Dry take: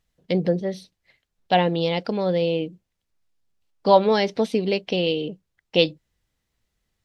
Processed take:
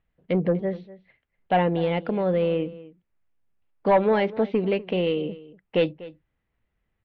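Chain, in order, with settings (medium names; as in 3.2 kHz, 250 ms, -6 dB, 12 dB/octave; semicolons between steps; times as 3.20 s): saturation -12 dBFS, distortion -15 dB; low-pass 2.6 kHz 24 dB/octave; echo from a far wall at 42 m, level -18 dB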